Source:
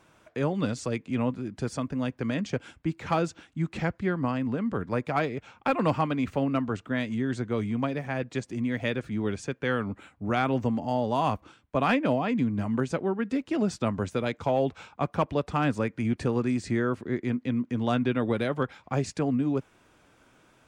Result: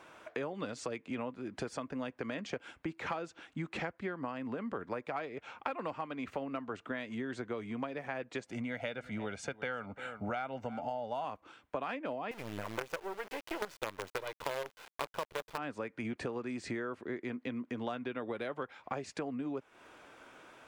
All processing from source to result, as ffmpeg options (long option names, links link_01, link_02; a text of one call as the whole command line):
ffmpeg -i in.wav -filter_complex "[0:a]asettb=1/sr,asplit=3[link_01][link_02][link_03];[link_01]atrim=end=8.474[link_04];[link_02]atrim=start=8.47:end=11.25,asetpts=PTS-STARTPTS,afade=type=in:duration=0.004:curve=qsin,afade=type=out:start_time=2.776:duration=0.004:curve=qsin,aecho=1:1:1.4:0.57,atrim=end_sample=122598,aecho=1:1:343:0.0944,atrim=end_sample=122598[link_05];[link_03]atrim=start=11.246[link_06];[link_04][link_05]acrossfade=duration=0.004:curve1=hsin:curve2=qsin[link_07];[link_07][link_06]acrossfade=duration=0.004:curve1=qsin:curve2=hsin,asettb=1/sr,asplit=3[link_08][link_09][link_10];[link_08]atrim=end=12.314[link_11];[link_09]atrim=start=12.31:end=15.58,asetpts=PTS-STARTPTS,afade=type=in:duration=0.004:curve=qsin,afade=type=out:start_time=3.266:duration=0.004:curve=qsin,aecho=1:1:2:0.78,atrim=end_sample=144207,acrusher=bits=4:dc=4:mix=0:aa=0.000001[link_12];[link_10]atrim=start=15.576[link_13];[link_11][link_12]acrossfade=duration=0.004:curve1=hsin:curve2=qsin[link_14];[link_14][link_13]acrossfade=duration=0.004:curve1=qsin:curve2=hsin,bass=frequency=250:gain=-14,treble=frequency=4000:gain=-7,acompressor=threshold=-42dB:ratio=8,volume=6.5dB" out.wav